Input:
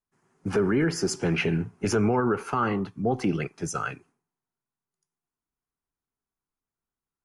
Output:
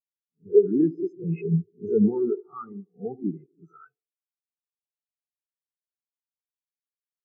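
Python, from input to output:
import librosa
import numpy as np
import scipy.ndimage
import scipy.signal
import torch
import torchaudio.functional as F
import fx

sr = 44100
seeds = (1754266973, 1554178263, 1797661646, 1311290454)

p1 = fx.spec_swells(x, sr, rise_s=0.58)
p2 = p1 + fx.echo_wet_bandpass(p1, sr, ms=75, feedback_pct=70, hz=540.0, wet_db=-6.5, dry=0)
p3 = fx.spectral_expand(p2, sr, expansion=4.0)
y = F.gain(torch.from_numpy(p3), 4.5).numpy()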